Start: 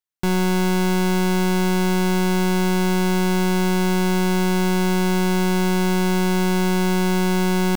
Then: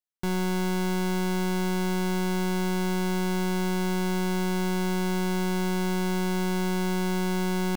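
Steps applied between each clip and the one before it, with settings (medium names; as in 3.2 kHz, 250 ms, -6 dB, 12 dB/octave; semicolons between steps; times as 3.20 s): band-stop 2.6 kHz, Q 26; trim -7.5 dB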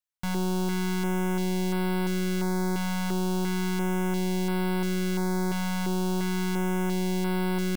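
step-sequenced notch 2.9 Hz 380–6500 Hz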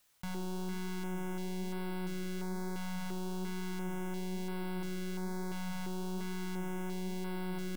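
flange 1.1 Hz, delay 7.1 ms, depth 7.8 ms, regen +81%; level flattener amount 50%; trim -8 dB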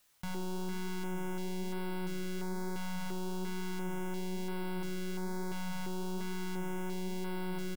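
doubling 13 ms -13 dB; trim +1 dB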